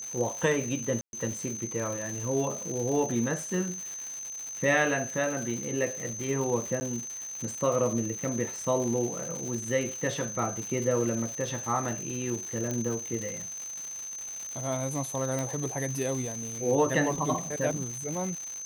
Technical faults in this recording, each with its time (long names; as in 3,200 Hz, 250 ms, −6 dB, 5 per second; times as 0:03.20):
surface crackle 260 per second −34 dBFS
whistle 6,200 Hz −36 dBFS
0:01.01–0:01.13: drop-out 121 ms
0:06.80–0:06.81: drop-out 10 ms
0:12.71: click −18 dBFS
0:15.39: click